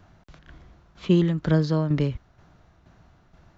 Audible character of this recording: tremolo saw down 2.1 Hz, depth 55%

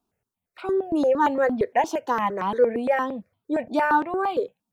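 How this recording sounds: notches that jump at a steady rate 8.7 Hz 520–1800 Hz

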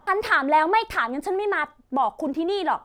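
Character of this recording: noise floor -56 dBFS; spectral tilt -0.5 dB/oct

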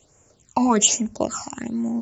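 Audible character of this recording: phasing stages 8, 1.2 Hz, lowest notch 450–4100 Hz

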